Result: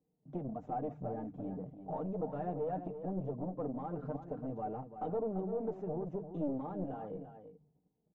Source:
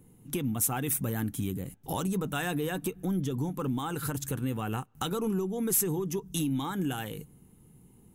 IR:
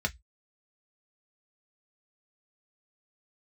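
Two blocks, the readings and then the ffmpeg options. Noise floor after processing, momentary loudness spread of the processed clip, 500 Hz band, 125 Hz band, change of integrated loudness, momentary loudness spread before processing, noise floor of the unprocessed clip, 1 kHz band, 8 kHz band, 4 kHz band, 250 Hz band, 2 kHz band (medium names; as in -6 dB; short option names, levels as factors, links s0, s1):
-80 dBFS, 7 LU, -3.0 dB, -10.5 dB, -8.5 dB, 8 LU, -58 dBFS, -4.0 dB, under -40 dB, under -35 dB, -8.5 dB, under -20 dB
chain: -filter_complex "[0:a]highpass=f=47:w=0.5412,highpass=f=47:w=1.3066,bandreject=f=50:t=h:w=6,bandreject=f=100:t=h:w=6,bandreject=f=150:t=h:w=6,bandreject=f=200:t=h:w=6,bandreject=f=250:t=h:w=6,agate=range=0.158:threshold=0.002:ratio=16:detection=peak,aecho=1:1:6.6:0.4,flanger=delay=3.9:depth=1.3:regen=-28:speed=1.4:shape=sinusoidal,aresample=16000,aeval=exprs='clip(val(0),-1,0.0168)':c=same,aresample=44100,lowpass=f=660:t=q:w=3.7,asplit=2[s0][s1];[s1]aecho=0:1:340:0.316[s2];[s0][s2]amix=inputs=2:normalize=0,volume=0.562"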